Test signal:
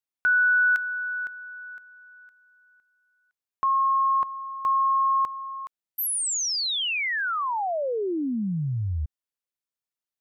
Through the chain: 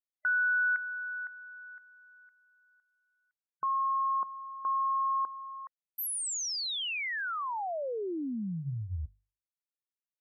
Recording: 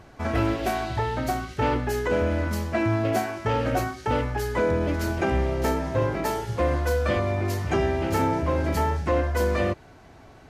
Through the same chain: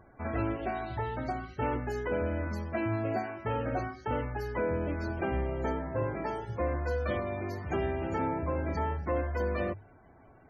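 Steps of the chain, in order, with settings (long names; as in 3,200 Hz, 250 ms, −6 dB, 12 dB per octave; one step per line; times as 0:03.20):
spectral peaks only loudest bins 64
mains-hum notches 50/100/150 Hz
level −7.5 dB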